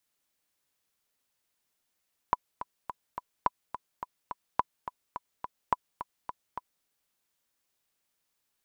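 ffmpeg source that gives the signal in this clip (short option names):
-f lavfi -i "aevalsrc='pow(10,(-10-12*gte(mod(t,4*60/212),60/212))/20)*sin(2*PI*992*mod(t,60/212))*exp(-6.91*mod(t,60/212)/0.03)':d=4.52:s=44100"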